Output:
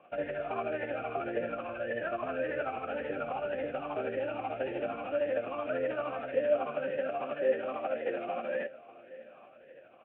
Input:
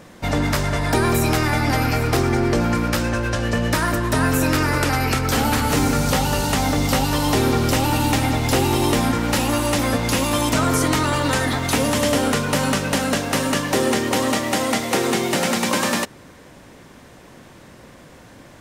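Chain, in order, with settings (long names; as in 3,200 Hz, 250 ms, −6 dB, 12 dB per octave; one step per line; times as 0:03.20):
variable-slope delta modulation 16 kbit/s
rotating-speaker cabinet horn 7 Hz
phase-vocoder stretch with locked phases 0.54×
on a send: repeating echo 820 ms, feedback 35%, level −19 dB
on the sum: formant filter swept between two vowels a-e 1.8 Hz
level +3.5 dB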